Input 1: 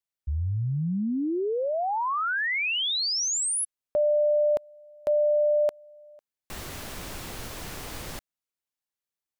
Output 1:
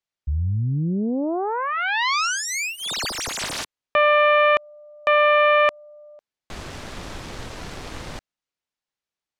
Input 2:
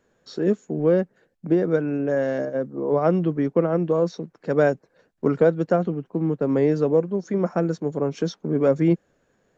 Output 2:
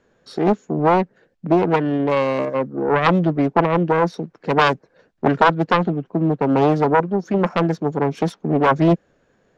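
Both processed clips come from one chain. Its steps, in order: self-modulated delay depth 0.82 ms; LPF 5800 Hz 12 dB/oct; gain +5 dB

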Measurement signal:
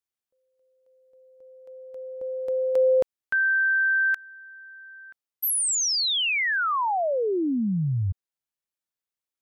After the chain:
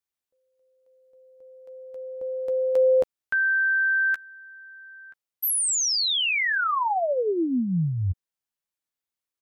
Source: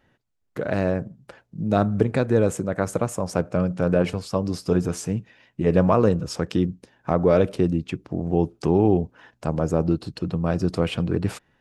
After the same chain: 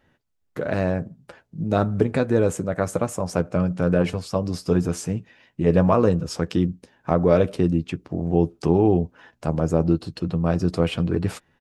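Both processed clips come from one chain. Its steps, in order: doubler 12 ms -10.5 dB

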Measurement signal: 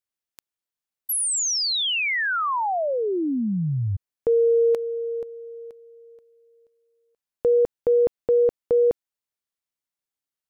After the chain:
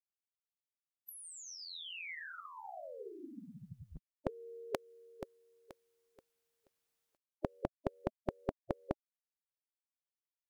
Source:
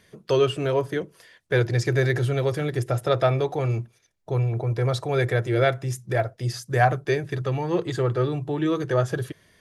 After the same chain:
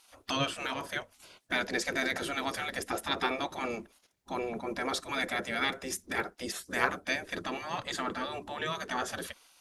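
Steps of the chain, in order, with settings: spectral gate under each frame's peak -15 dB weak; in parallel at -2 dB: compressor, threshold -43 dBFS

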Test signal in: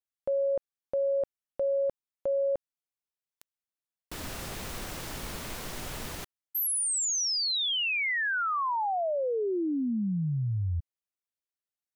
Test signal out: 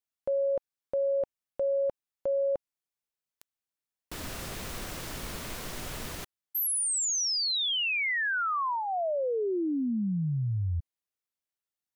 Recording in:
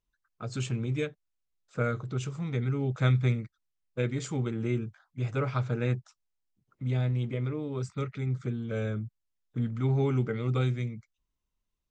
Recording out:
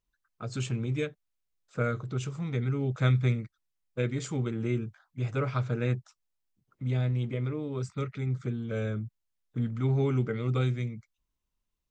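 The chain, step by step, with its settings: dynamic EQ 840 Hz, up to -4 dB, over -54 dBFS, Q 7

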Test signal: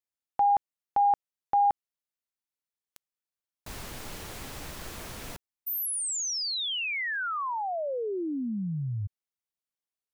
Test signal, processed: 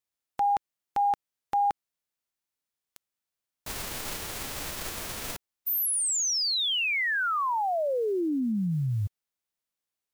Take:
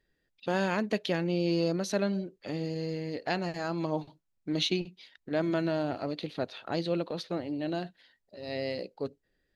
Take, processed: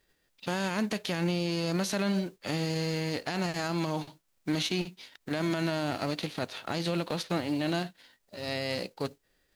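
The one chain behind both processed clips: spectral whitening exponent 0.6; limiter -24.5 dBFS; gain +4 dB

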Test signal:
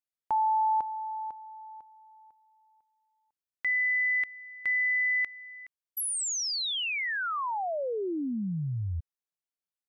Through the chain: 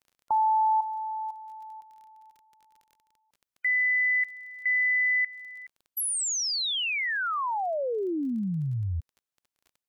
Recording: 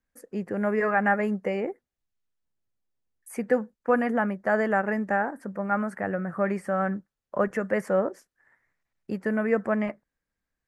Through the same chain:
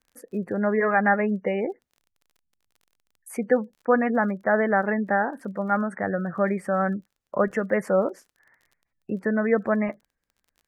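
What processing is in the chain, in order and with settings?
spectral gate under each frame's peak -30 dB strong; crackle 26/s -48 dBFS; gain +2.5 dB

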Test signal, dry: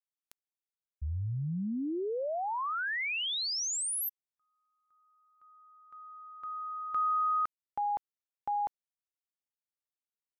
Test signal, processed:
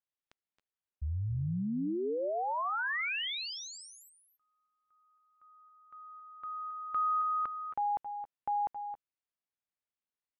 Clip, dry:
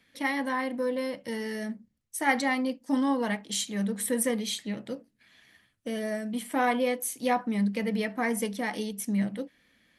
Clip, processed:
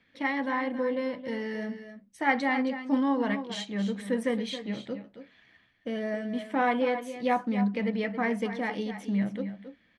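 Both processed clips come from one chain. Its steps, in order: LPF 3200 Hz 12 dB/oct; tapped delay 0.27/0.281 s -11.5/-18.5 dB

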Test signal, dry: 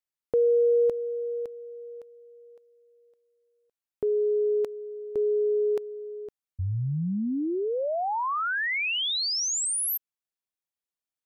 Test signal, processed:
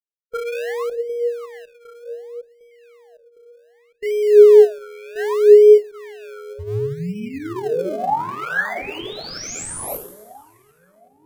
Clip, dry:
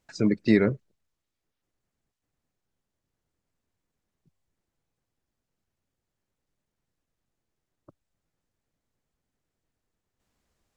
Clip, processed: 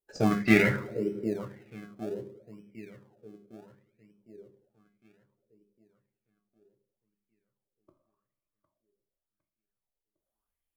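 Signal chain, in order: per-bin expansion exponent 1.5; dynamic EQ 3600 Hz, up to -6 dB, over -46 dBFS, Q 1.2; on a send: split-band echo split 970 Hz, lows 0.757 s, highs 84 ms, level -13.5 dB; on the sum: two-slope reverb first 0.46 s, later 2.3 s, DRR 3 dB; in parallel at -8 dB: decimation with a swept rate 32×, swing 100% 0.66 Hz; on the sum: bell 110 Hz +2 dB; notches 50/100/150/200 Hz; LFO bell 0.89 Hz 370–2400 Hz +16 dB; gain -4 dB

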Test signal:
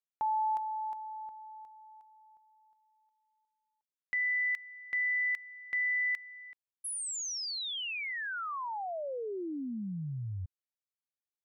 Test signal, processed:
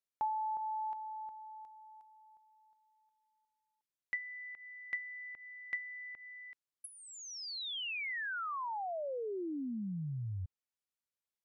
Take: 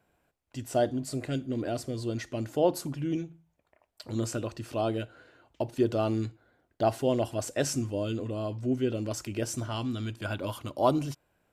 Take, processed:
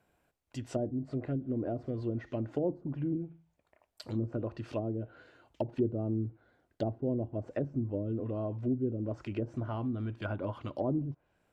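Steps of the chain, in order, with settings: treble ducked by the level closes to 350 Hz, closed at -26 dBFS; gain -1.5 dB

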